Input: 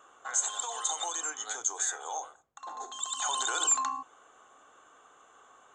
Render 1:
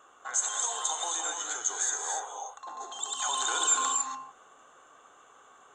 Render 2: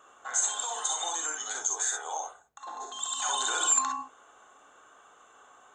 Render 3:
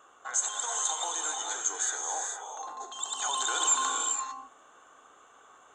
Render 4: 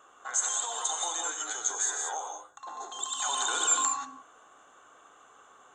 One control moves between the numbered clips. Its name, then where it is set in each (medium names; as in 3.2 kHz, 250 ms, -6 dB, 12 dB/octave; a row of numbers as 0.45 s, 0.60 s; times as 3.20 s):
gated-style reverb, gate: 310 ms, 80 ms, 480 ms, 210 ms